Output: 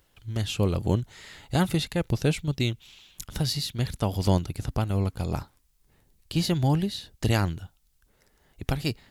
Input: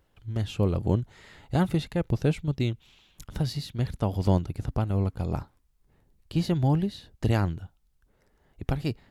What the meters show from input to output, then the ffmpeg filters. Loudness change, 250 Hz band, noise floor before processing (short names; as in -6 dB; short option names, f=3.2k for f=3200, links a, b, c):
+0.5 dB, 0.0 dB, -67 dBFS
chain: -af "highshelf=f=2.3k:g=11.5"